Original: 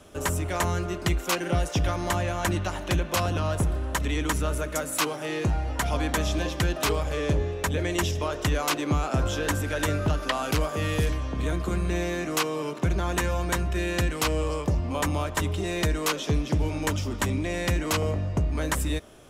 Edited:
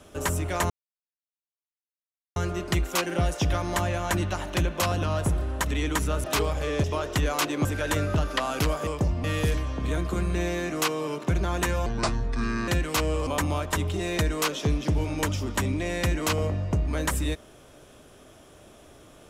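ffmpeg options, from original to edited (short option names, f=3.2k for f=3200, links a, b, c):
-filter_complex "[0:a]asplit=10[a][b][c][d][e][f][g][h][i][j];[a]atrim=end=0.7,asetpts=PTS-STARTPTS,afade=t=out:st=0.696:d=0.004:c=hsin,apad=pad_dur=1.66[k];[b]atrim=start=0.7:end=4.582,asetpts=PTS-STARTPTS,afade=t=in:d=0.004:c=hsin[l];[c]atrim=start=6.738:end=7.342[m];[d]atrim=start=8.128:end=8.942[n];[e]atrim=start=9.568:end=10.792[o];[f]atrim=start=14.538:end=14.912[p];[g]atrim=start=10.788:end=13.414[q];[h]atrim=start=13.41:end=13.95,asetpts=PTS-STARTPTS,asetrate=29106,aresample=44100[r];[i]atrim=start=13.946:end=14.542[s];[j]atrim=start=14.908[t];[k][l]concat=n=2:v=0:a=1[u];[u][m]acrossfade=d=0.004:c1=hsin:c2=hsin[v];[v][n]acrossfade=d=0.004:c1=hsin:c2=hsin[w];[w][o]acrossfade=d=0.004:c1=hsin:c2=hsin[x];[x][p]acrossfade=d=0.004:c1=hsin:c2=hsin[y];[y][q]acrossfade=d=0.004:c1=hsin:c2=hsin[z];[z][r]acrossfade=d=0.004:c1=hsin:c2=hsin[aa];[aa][s]acrossfade=d=0.004:c1=hsin:c2=hsin[ab];[ab][t]acrossfade=d=0.004:c1=hsin:c2=hsin"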